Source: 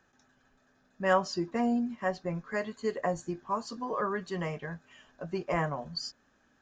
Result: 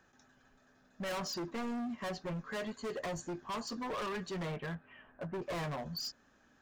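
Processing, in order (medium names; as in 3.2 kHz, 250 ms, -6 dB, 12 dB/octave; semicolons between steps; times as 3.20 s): 4.42–5.41 s: low-pass 3.8 kHz -> 1.8 kHz 24 dB/octave; hard clipper -37 dBFS, distortion -3 dB; trim +1 dB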